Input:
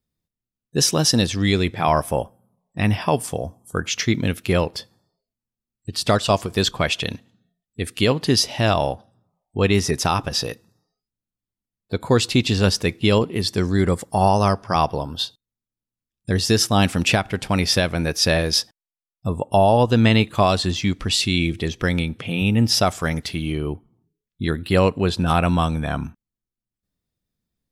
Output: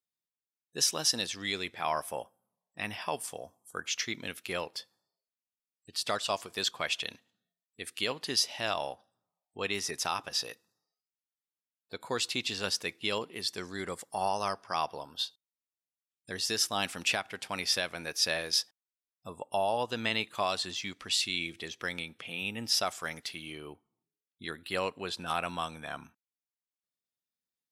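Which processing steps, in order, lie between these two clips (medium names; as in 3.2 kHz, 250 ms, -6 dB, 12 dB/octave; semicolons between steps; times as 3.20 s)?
high-pass 1.1 kHz 6 dB/octave; trim -8 dB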